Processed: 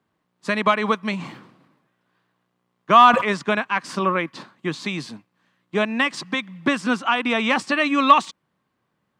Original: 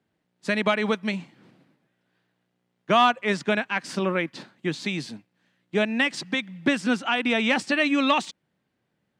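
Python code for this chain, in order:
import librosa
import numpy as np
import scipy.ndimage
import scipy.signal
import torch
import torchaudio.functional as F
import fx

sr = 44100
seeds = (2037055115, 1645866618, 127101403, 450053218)

y = fx.peak_eq(x, sr, hz=1100.0, db=12.0, octaves=0.43)
y = fx.sustainer(y, sr, db_per_s=73.0, at=(1.05, 3.29))
y = y * 10.0 ** (1.0 / 20.0)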